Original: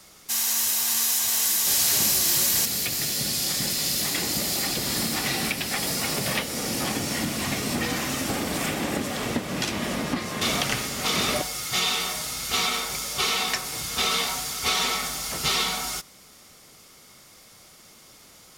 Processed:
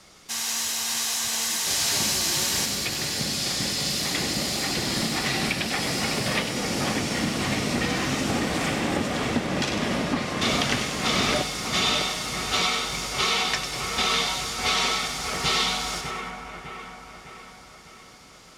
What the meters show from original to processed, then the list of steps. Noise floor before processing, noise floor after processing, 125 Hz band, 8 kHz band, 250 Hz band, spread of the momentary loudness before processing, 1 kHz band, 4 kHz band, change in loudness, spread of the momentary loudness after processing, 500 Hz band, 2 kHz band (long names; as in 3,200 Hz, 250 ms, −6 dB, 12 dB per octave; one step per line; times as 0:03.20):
−51 dBFS, −48 dBFS, +3.0 dB, −2.5 dB, +2.5 dB, 8 LU, +2.5 dB, +1.0 dB, −0.5 dB, 6 LU, +2.5 dB, +2.0 dB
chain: high-frequency loss of the air 57 metres
echo with a time of its own for lows and highs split 2,400 Hz, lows 603 ms, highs 98 ms, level −6 dB
level +1.5 dB